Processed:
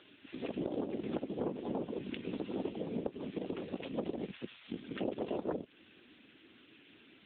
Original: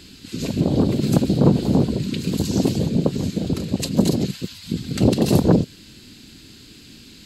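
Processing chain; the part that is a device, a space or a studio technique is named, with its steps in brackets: voicemail (band-pass 430–2800 Hz; compression 6:1, threshold -29 dBFS, peak gain reduction 12.5 dB; trim -3 dB; AMR-NB 6.7 kbps 8 kHz)

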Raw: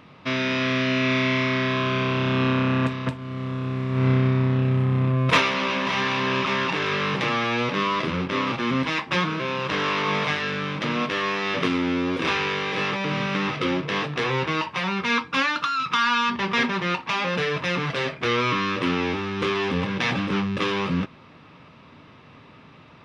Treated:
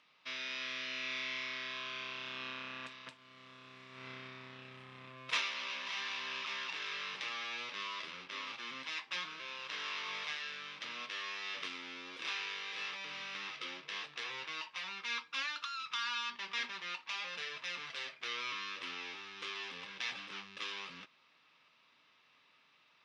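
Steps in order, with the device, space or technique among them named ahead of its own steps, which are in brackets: piezo pickup straight into a mixer (low-pass 5.3 kHz 12 dB/octave; differentiator); trim -4 dB

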